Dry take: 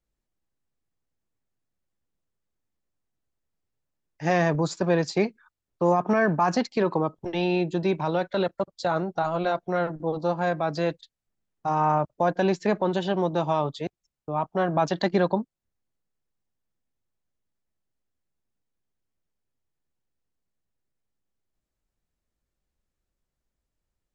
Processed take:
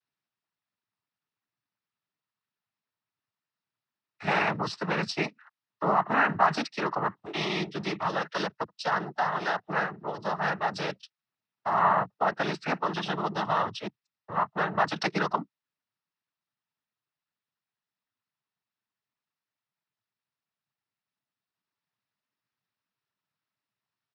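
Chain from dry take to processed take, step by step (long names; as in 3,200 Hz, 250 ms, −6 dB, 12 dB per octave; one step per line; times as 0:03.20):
low shelf with overshoot 750 Hz −9 dB, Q 1.5
downsampling to 11,025 Hz
cochlear-implant simulation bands 12
level +2 dB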